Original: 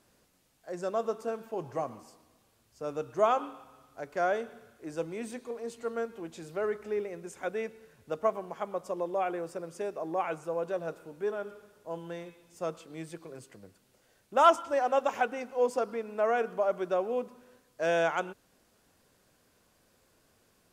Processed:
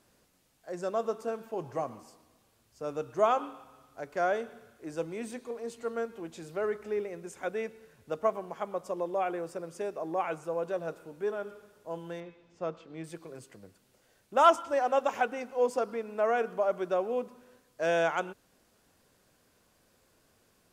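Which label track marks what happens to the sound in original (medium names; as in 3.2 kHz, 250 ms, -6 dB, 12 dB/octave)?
12.200000	13.040000	distance through air 170 m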